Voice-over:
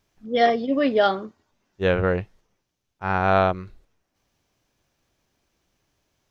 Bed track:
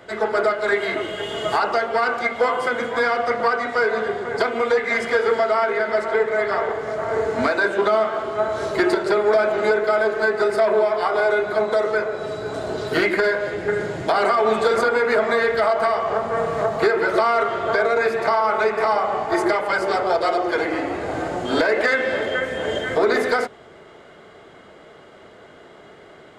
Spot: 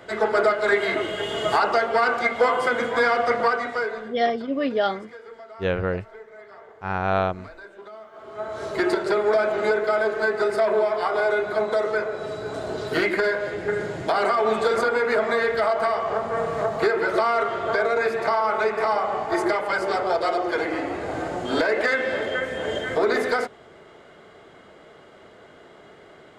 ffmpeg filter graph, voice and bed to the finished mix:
ffmpeg -i stem1.wav -i stem2.wav -filter_complex "[0:a]adelay=3800,volume=-3.5dB[link_01];[1:a]volume=20.5dB,afade=type=out:start_time=3.35:duration=0.83:silence=0.0668344,afade=type=in:start_time=8.11:duration=0.81:silence=0.0944061[link_02];[link_01][link_02]amix=inputs=2:normalize=0" out.wav

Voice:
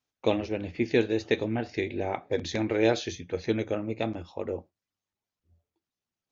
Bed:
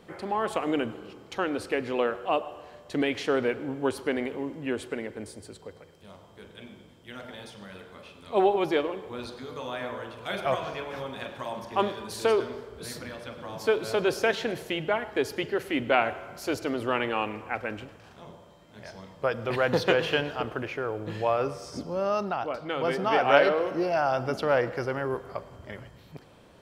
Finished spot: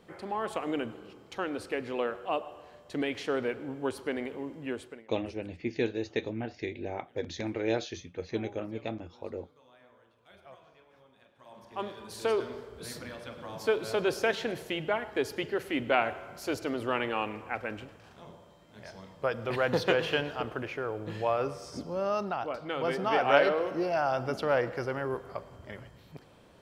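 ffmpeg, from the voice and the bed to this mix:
ffmpeg -i stem1.wav -i stem2.wav -filter_complex "[0:a]adelay=4850,volume=-6dB[link_01];[1:a]volume=17dB,afade=type=out:start_time=4.71:duration=0.35:silence=0.1,afade=type=in:start_time=11.35:duration=1.21:silence=0.0794328[link_02];[link_01][link_02]amix=inputs=2:normalize=0" out.wav

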